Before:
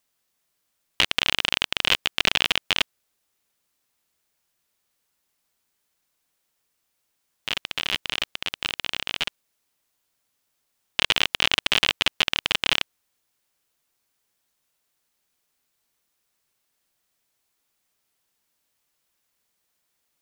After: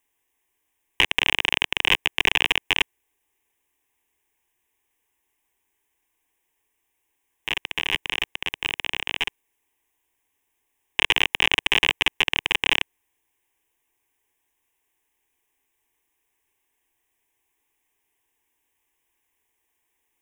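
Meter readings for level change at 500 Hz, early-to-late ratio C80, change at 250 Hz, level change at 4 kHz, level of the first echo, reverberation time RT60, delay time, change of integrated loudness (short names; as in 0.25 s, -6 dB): +1.0 dB, none, +1.5 dB, -0.5 dB, none, none, none, +1.0 dB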